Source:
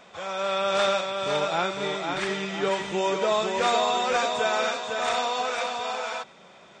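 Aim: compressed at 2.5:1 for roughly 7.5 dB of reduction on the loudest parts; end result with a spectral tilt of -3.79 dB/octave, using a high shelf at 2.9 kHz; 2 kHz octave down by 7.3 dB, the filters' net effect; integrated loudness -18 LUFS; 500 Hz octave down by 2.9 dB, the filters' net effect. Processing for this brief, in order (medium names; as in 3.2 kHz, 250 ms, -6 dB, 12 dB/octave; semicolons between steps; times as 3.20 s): peaking EQ 500 Hz -3 dB; peaking EQ 2 kHz -8 dB; treble shelf 2.9 kHz -5 dB; compression 2.5:1, threshold -34 dBFS; trim +17 dB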